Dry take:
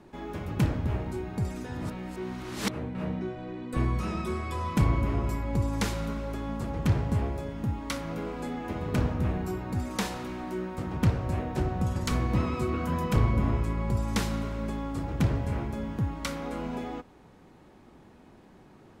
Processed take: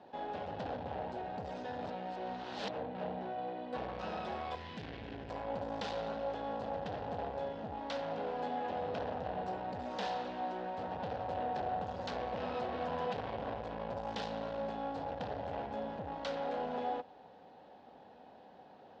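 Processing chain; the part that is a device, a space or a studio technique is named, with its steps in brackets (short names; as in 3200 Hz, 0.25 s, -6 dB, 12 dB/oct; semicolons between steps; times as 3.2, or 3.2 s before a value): guitar amplifier (tube stage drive 34 dB, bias 0.55; tone controls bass -11 dB, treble +2 dB; speaker cabinet 83–4200 Hz, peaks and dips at 130 Hz -5 dB, 350 Hz -10 dB, 520 Hz +6 dB, 760 Hz +9 dB, 1200 Hz -8 dB, 2200 Hz -9 dB); 4.55–5.3 band shelf 810 Hz -11.5 dB; gain +2 dB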